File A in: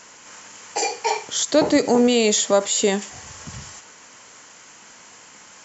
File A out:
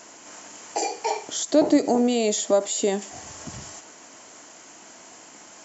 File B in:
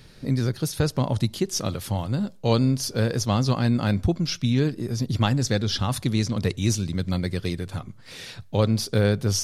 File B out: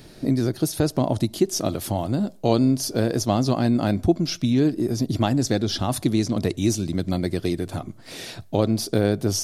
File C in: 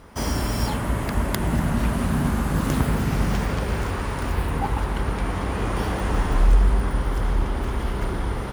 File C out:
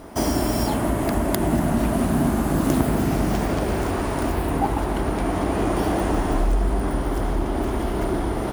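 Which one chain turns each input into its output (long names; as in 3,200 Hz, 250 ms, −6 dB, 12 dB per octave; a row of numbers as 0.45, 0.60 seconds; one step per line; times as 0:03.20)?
high-shelf EQ 6,500 Hz +8.5 dB
downward compressor 1.5 to 1, threshold −29 dBFS
hollow resonant body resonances 320/650 Hz, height 12 dB, ringing for 20 ms
loudness normalisation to −23 LKFS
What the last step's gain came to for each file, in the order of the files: −5.0, 0.0, +1.0 decibels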